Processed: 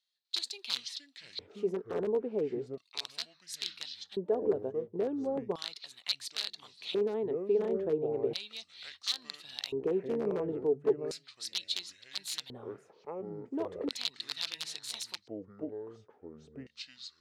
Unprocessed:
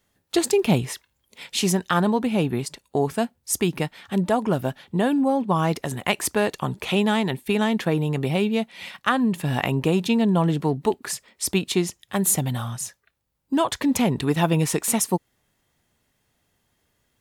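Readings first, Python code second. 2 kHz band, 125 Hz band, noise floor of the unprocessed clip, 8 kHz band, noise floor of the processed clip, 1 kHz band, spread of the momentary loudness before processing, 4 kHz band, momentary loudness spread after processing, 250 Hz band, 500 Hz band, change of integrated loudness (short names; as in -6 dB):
-18.0 dB, -24.0 dB, -72 dBFS, -18.0 dB, -69 dBFS, -21.0 dB, 8 LU, -4.5 dB, 14 LU, -17.5 dB, -7.0 dB, -12.0 dB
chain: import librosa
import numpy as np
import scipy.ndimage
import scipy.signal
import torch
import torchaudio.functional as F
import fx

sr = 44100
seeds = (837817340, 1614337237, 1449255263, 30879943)

y = fx.echo_pitch(x, sr, ms=248, semitones=-6, count=2, db_per_echo=-6.0)
y = (np.mod(10.0 ** (10.5 / 20.0) * y + 1.0, 2.0) - 1.0) / 10.0 ** (10.5 / 20.0)
y = fx.filter_lfo_bandpass(y, sr, shape='square', hz=0.36, low_hz=430.0, high_hz=4100.0, q=6.0)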